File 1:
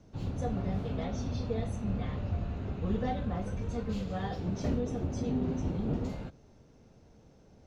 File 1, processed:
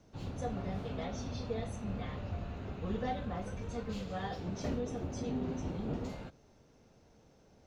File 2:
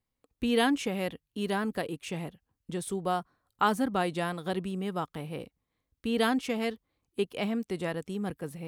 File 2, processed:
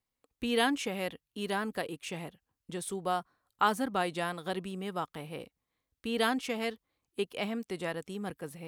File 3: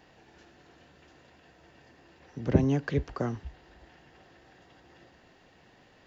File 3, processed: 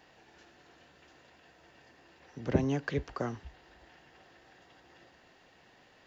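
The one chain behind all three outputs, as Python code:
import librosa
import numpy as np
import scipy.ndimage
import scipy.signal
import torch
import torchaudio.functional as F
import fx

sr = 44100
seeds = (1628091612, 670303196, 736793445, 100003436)

y = fx.low_shelf(x, sr, hz=380.0, db=-7.0)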